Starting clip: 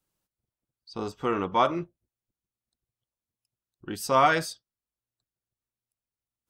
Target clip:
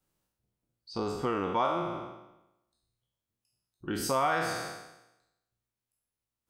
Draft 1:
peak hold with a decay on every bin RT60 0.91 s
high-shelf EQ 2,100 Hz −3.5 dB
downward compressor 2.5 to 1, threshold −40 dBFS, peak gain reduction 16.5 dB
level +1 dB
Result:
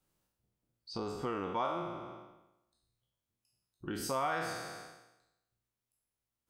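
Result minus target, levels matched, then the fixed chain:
downward compressor: peak gain reduction +6 dB
peak hold with a decay on every bin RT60 0.91 s
high-shelf EQ 2,100 Hz −3.5 dB
downward compressor 2.5 to 1, threshold −30 dBFS, peak gain reduction 10.5 dB
level +1 dB

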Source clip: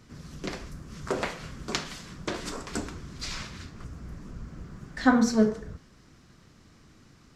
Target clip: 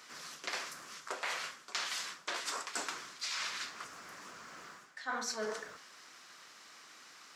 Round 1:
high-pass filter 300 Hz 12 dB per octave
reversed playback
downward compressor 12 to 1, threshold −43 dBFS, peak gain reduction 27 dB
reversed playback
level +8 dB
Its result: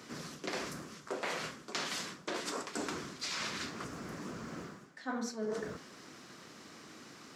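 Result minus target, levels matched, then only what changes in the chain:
250 Hz band +12.5 dB
change: high-pass filter 940 Hz 12 dB per octave

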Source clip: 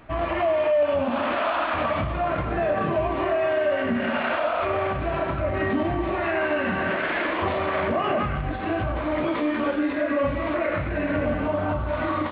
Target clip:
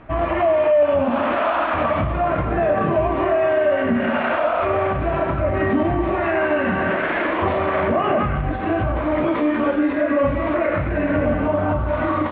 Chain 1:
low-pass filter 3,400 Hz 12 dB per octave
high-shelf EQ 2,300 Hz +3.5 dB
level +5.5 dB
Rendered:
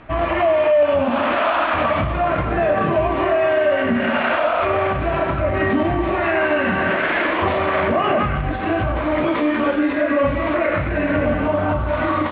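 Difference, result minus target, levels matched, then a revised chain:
4,000 Hz band +5.0 dB
low-pass filter 3,400 Hz 12 dB per octave
high-shelf EQ 2,300 Hz −6 dB
level +5.5 dB

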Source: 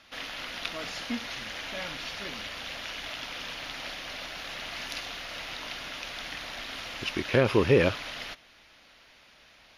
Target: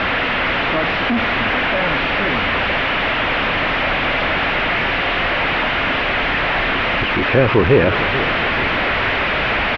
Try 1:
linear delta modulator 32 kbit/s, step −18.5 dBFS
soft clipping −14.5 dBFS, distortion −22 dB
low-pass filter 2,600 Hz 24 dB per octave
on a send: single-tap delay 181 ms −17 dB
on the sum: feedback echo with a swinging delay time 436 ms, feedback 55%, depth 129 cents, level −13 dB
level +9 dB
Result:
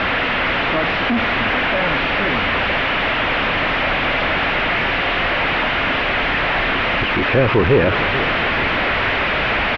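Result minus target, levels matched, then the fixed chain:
soft clipping: distortion +9 dB
linear delta modulator 32 kbit/s, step −18.5 dBFS
soft clipping −8.5 dBFS, distortion −31 dB
low-pass filter 2,600 Hz 24 dB per octave
on a send: single-tap delay 181 ms −17 dB
on the sum: feedback echo with a swinging delay time 436 ms, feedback 55%, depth 129 cents, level −13 dB
level +9 dB

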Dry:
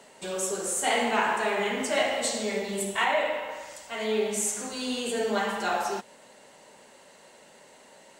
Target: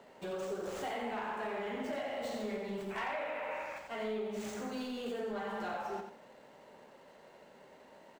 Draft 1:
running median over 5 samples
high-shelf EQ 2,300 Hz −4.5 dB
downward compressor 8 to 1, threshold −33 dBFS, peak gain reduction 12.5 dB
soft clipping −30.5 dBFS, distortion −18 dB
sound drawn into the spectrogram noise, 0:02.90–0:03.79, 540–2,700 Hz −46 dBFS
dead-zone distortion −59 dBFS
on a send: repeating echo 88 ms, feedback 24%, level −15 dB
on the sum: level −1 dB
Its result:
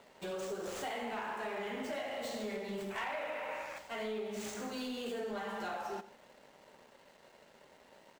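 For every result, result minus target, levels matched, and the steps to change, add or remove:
dead-zone distortion: distortion +10 dB; echo-to-direct −8 dB; 4,000 Hz band +3.5 dB
change: dead-zone distortion −70 dBFS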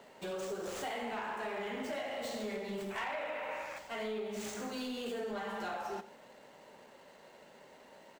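echo-to-direct −8 dB; 4,000 Hz band +3.0 dB
change: repeating echo 88 ms, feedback 24%, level −7 dB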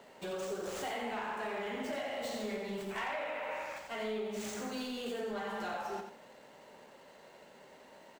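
4,000 Hz band +3.5 dB
change: high-shelf EQ 2,300 Hz −11 dB

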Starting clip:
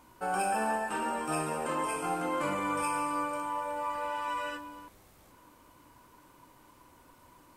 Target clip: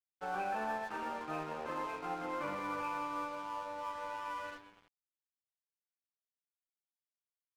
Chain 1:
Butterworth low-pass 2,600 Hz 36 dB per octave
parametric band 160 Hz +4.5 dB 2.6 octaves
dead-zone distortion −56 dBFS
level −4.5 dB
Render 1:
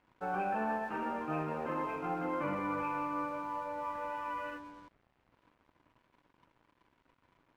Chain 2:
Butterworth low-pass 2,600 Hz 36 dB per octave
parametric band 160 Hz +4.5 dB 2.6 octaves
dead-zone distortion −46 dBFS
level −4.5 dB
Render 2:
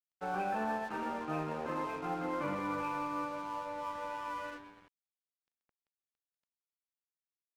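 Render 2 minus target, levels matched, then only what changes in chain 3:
125 Hz band +6.0 dB
change: parametric band 160 Hz −3.5 dB 2.6 octaves

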